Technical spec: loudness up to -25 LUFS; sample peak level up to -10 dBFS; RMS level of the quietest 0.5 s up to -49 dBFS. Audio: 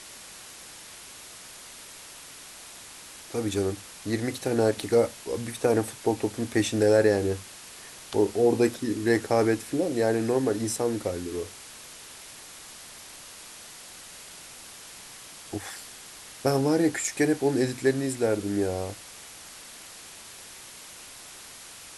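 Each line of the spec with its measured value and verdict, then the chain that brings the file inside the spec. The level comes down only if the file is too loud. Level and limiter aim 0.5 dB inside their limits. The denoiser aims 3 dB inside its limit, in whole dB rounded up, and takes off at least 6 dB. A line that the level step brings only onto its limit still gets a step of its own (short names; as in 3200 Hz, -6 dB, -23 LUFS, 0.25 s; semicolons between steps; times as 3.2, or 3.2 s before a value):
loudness -26.5 LUFS: OK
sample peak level -8.5 dBFS: fail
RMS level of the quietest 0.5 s -45 dBFS: fail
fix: denoiser 7 dB, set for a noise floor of -45 dBFS; limiter -10.5 dBFS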